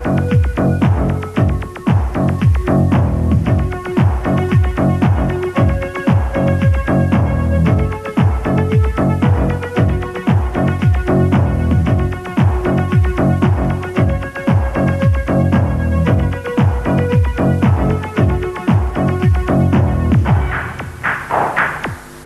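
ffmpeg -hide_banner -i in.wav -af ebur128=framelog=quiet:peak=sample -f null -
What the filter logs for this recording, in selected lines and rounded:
Integrated loudness:
  I:         -15.3 LUFS
  Threshold: -25.3 LUFS
Loudness range:
  LRA:         0.8 LU
  Threshold: -35.2 LUFS
  LRA low:   -15.5 LUFS
  LRA high:  -14.8 LUFS
Sample peak:
  Peak:       -3.7 dBFS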